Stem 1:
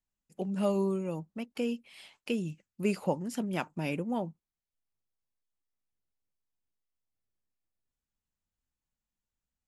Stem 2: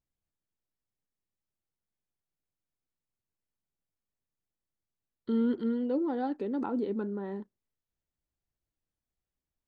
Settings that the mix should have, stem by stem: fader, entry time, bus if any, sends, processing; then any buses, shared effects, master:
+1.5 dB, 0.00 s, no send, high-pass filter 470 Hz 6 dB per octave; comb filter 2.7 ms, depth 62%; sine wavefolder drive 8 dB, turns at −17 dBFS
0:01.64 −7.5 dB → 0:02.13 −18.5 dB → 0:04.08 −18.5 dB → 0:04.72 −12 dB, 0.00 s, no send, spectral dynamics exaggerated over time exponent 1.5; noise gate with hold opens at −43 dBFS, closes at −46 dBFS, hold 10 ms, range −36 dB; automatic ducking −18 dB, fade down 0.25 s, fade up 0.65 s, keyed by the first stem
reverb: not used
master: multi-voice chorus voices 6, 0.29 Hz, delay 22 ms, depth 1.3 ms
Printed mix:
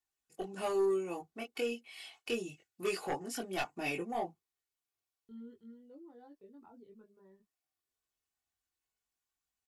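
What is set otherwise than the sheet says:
stem 1 +1.5 dB → −7.5 dB
stem 2 −7.5 dB → −14.5 dB

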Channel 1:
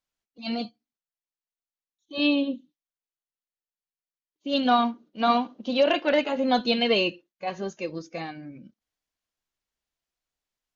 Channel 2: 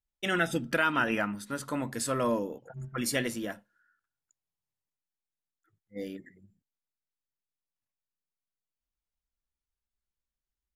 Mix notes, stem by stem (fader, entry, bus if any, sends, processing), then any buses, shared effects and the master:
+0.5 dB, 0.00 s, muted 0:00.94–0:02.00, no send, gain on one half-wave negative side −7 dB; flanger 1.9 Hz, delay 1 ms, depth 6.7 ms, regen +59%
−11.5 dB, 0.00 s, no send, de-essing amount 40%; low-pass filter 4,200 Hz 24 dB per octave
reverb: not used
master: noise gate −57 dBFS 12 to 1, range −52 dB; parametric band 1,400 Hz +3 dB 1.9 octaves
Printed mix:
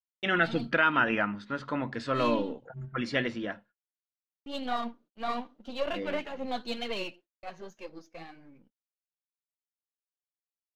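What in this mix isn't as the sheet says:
stem 1 +0.5 dB → −6.0 dB
stem 2 −11.5 dB → 0.0 dB

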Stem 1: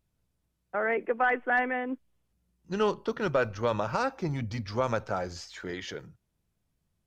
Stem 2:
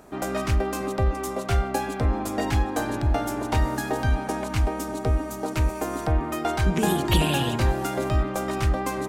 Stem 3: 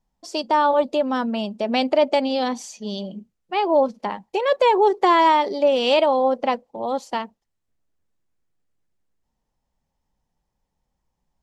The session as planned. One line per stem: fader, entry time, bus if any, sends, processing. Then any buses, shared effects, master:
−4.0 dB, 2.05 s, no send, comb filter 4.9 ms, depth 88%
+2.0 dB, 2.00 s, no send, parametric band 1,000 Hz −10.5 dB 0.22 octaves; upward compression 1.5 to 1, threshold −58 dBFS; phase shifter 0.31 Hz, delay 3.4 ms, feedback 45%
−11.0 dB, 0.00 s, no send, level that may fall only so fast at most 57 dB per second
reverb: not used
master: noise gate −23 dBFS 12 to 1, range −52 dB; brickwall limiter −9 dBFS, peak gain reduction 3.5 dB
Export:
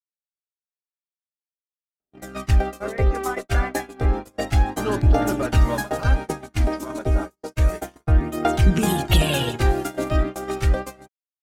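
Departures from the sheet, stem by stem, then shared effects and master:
stem 3: muted
master: missing brickwall limiter −9 dBFS, peak gain reduction 3.5 dB

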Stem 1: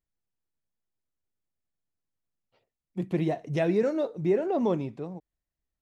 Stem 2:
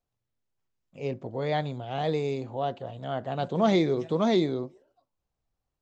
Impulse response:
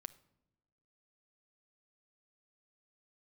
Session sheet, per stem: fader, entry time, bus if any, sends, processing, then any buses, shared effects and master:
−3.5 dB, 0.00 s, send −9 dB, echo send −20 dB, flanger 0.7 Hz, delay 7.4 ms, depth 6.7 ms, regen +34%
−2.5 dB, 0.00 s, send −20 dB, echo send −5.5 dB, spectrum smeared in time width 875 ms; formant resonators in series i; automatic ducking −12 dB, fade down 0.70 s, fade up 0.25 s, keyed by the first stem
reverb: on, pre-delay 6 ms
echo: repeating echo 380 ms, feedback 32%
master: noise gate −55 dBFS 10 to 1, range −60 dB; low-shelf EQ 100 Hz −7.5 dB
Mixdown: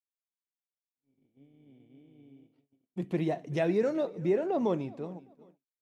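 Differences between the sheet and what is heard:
stem 1: missing flanger 0.7 Hz, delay 7.4 ms, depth 6.7 ms, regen +34%
stem 2 −2.5 dB → −13.0 dB

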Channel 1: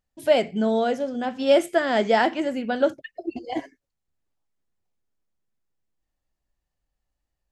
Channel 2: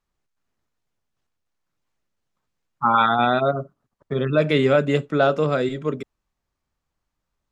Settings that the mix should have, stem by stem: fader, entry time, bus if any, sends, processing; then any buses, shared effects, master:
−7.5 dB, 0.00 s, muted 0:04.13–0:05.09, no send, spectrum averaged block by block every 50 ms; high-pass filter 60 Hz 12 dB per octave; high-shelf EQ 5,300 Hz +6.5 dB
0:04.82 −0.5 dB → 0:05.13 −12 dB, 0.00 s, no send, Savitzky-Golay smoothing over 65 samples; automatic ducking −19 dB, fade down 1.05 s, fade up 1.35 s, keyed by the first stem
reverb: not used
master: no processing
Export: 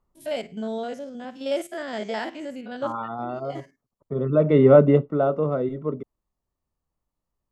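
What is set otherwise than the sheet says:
stem 2 −0.5 dB → +9.0 dB
master: extra parametric band 790 Hz −3 dB 0.22 octaves

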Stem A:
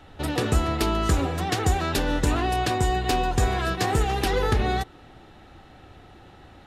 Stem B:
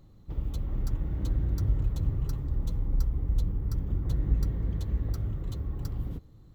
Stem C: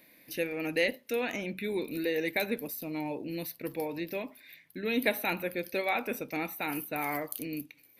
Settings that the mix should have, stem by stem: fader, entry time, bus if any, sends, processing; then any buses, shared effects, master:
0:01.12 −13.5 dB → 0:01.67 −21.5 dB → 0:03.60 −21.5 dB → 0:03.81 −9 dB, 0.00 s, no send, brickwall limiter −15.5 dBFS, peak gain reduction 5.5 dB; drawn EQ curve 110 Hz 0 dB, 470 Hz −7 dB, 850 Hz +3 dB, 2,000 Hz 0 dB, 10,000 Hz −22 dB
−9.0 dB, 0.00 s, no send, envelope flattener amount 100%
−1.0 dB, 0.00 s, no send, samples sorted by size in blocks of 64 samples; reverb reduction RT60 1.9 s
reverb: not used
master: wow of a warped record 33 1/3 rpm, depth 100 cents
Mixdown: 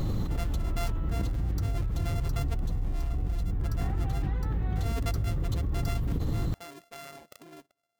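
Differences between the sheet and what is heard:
stem A −13.5 dB → −22.5 dB
stem C −1.0 dB → −9.0 dB
master: missing wow of a warped record 33 1/3 rpm, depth 100 cents

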